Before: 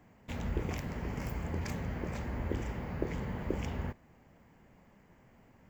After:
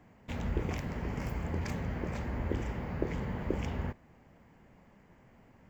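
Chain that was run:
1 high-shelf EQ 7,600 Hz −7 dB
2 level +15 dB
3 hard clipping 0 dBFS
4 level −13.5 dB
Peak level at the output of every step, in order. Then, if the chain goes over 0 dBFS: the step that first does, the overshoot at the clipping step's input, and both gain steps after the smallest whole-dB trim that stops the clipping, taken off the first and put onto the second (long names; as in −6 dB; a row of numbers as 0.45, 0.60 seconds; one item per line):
−18.5, −3.5, −3.5, −17.0 dBFS
no step passes full scale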